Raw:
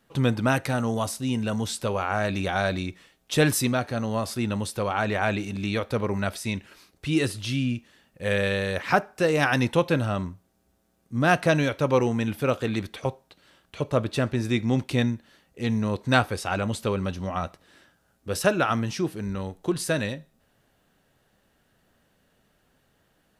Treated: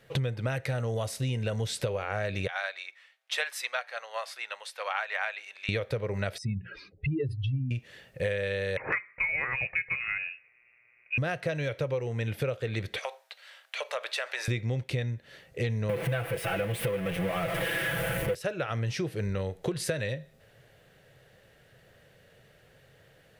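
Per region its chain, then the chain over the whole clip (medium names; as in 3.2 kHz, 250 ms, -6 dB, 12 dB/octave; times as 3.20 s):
2.47–5.69 s: high-pass 840 Hz 24 dB/octave + treble shelf 4.7 kHz -8.5 dB + upward expansion, over -43 dBFS
6.38–7.71 s: spectral contrast enhancement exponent 2.8 + distance through air 75 m + hum notches 60/120/180/240/300 Hz
8.77–11.18 s: high-pass 240 Hz 6 dB/octave + frequency inversion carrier 2.7 kHz
12.99–14.48 s: high-pass 760 Hz 24 dB/octave + compression 2.5:1, threshold -36 dBFS
15.89–18.35 s: jump at every zero crossing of -21 dBFS + high-order bell 5.4 kHz -12 dB 1.2 oct + comb 6 ms, depth 92%
whole clip: graphic EQ 125/250/500/1000/2000/4000 Hz +12/-9/+12/-5/+9/+3 dB; compression 16:1, threshold -29 dBFS; trim +2 dB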